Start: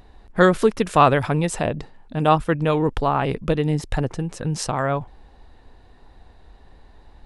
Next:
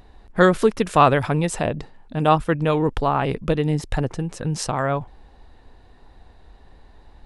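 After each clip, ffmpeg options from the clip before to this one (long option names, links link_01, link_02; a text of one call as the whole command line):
ffmpeg -i in.wav -af anull out.wav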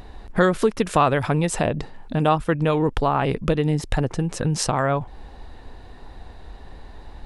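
ffmpeg -i in.wav -af "acompressor=threshold=-31dB:ratio=2,volume=8dB" out.wav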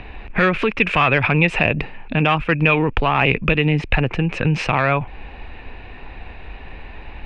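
ffmpeg -i in.wav -filter_complex "[0:a]acrossover=split=150|950[link_01][link_02][link_03];[link_02]alimiter=limit=-17.5dB:level=0:latency=1[link_04];[link_03]asoftclip=type=hard:threshold=-22.5dB[link_05];[link_01][link_04][link_05]amix=inputs=3:normalize=0,lowpass=frequency=2500:width_type=q:width=8.7,volume=4.5dB" out.wav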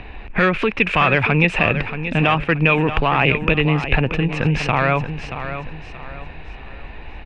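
ffmpeg -i in.wav -af "aecho=1:1:629|1258|1887|2516:0.299|0.104|0.0366|0.0128" out.wav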